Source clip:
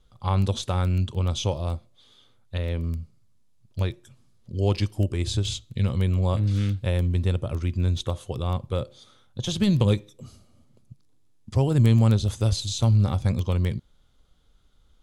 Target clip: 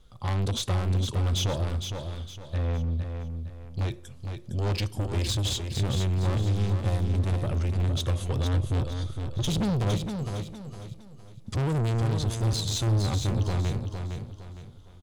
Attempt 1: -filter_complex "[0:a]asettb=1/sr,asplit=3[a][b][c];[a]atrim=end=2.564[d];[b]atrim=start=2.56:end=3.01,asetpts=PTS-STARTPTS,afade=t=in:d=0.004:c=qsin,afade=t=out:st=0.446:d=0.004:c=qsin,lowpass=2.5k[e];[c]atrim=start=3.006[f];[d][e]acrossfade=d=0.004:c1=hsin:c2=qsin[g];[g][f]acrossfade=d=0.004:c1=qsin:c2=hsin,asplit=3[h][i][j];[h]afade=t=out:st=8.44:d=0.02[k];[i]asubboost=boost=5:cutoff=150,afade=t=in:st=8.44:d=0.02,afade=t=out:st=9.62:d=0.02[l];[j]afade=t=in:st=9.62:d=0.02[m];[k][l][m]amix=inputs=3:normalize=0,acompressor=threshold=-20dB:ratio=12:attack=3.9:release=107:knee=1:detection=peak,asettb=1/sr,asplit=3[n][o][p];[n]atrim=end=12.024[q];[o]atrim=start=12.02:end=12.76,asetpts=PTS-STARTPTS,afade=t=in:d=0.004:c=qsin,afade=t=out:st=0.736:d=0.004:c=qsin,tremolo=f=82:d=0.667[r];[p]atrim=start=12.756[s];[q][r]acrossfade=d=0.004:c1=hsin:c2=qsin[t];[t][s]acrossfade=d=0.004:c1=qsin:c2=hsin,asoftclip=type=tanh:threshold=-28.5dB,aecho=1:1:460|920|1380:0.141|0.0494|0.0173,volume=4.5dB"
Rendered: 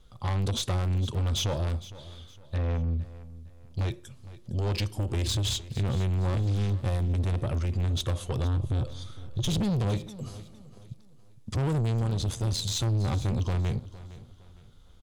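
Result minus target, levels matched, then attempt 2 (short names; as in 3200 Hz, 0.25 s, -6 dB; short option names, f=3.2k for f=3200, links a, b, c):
compressor: peak gain reduction +9.5 dB; echo-to-direct -10.5 dB
-filter_complex "[0:a]asettb=1/sr,asplit=3[a][b][c];[a]atrim=end=2.564[d];[b]atrim=start=2.56:end=3.01,asetpts=PTS-STARTPTS,afade=t=in:d=0.004:c=qsin,afade=t=out:st=0.446:d=0.004:c=qsin,lowpass=2.5k[e];[c]atrim=start=3.006[f];[d][e]acrossfade=d=0.004:c1=hsin:c2=qsin[g];[g][f]acrossfade=d=0.004:c1=qsin:c2=hsin,asplit=3[h][i][j];[h]afade=t=out:st=8.44:d=0.02[k];[i]asubboost=boost=5:cutoff=150,afade=t=in:st=8.44:d=0.02,afade=t=out:st=9.62:d=0.02[l];[j]afade=t=in:st=9.62:d=0.02[m];[k][l][m]amix=inputs=3:normalize=0,asettb=1/sr,asplit=3[n][o][p];[n]atrim=end=12.024[q];[o]atrim=start=12.02:end=12.76,asetpts=PTS-STARTPTS,afade=t=in:d=0.004:c=qsin,afade=t=out:st=0.736:d=0.004:c=qsin,tremolo=f=82:d=0.667[r];[p]atrim=start=12.756[s];[q][r]acrossfade=d=0.004:c1=hsin:c2=qsin[t];[t][s]acrossfade=d=0.004:c1=qsin:c2=hsin,asoftclip=type=tanh:threshold=-28.5dB,aecho=1:1:460|920|1380|1840:0.473|0.166|0.058|0.0203,volume=4.5dB"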